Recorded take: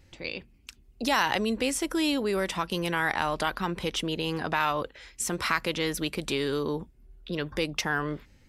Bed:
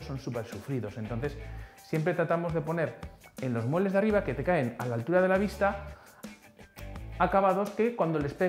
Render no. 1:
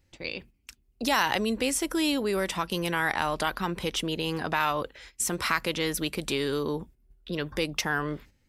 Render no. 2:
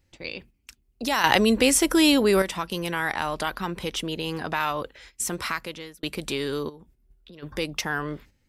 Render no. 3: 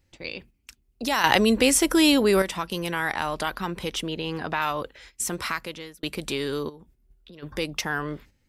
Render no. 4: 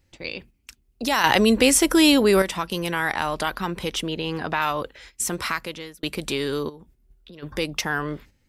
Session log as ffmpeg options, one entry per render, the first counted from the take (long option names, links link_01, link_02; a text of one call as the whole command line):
ffmpeg -i in.wav -af "agate=range=-10dB:threshold=-48dB:ratio=16:detection=peak,highshelf=frequency=10000:gain=7" out.wav
ffmpeg -i in.wav -filter_complex "[0:a]asplit=3[link_01][link_02][link_03];[link_01]afade=type=out:start_time=6.68:duration=0.02[link_04];[link_02]acompressor=threshold=-48dB:ratio=3:attack=3.2:release=140:knee=1:detection=peak,afade=type=in:start_time=6.68:duration=0.02,afade=type=out:start_time=7.42:duration=0.02[link_05];[link_03]afade=type=in:start_time=7.42:duration=0.02[link_06];[link_04][link_05][link_06]amix=inputs=3:normalize=0,asplit=4[link_07][link_08][link_09][link_10];[link_07]atrim=end=1.242[link_11];[link_08]atrim=start=1.238:end=2.422,asetpts=PTS-STARTPTS,volume=8dB[link_12];[link_09]atrim=start=2.418:end=6.03,asetpts=PTS-STARTPTS,afade=type=out:start_time=2.922:duration=0.69[link_13];[link_10]atrim=start=6.03,asetpts=PTS-STARTPTS,afade=type=in:duration=0.004:curve=hsin[link_14];[link_11][link_12]acrossfade=duration=0.004:curve1=hsin:curve2=hsin[link_15];[link_13][link_14]concat=n=2:v=0:a=1[link_16];[link_15][link_16]acrossfade=duration=0.004:curve1=hsin:curve2=hsin" out.wav
ffmpeg -i in.wav -filter_complex "[0:a]asettb=1/sr,asplit=3[link_01][link_02][link_03];[link_01]atrim=end=4.014[link_04];[link_02]atrim=start=4.01:end=4.62,asetpts=PTS-STARTPTS,afade=type=in:duration=0.004:curve=qsin,afade=type=out:start_time=0.606:duration=0.004:curve=qsin,acrossover=split=4800[link_05][link_06];[link_06]acompressor=threshold=-57dB:ratio=4:attack=1:release=60[link_07];[link_05][link_07]amix=inputs=2:normalize=0[link_08];[link_03]atrim=start=4.616[link_09];[link_04][link_08]acrossfade=duration=0.004:curve1=hsin:curve2=qsin[link_10];[link_10][link_09]acrossfade=duration=0.004:curve1=qsin:curve2=hsin" out.wav
ffmpeg -i in.wav -af "volume=2.5dB,alimiter=limit=-2dB:level=0:latency=1" out.wav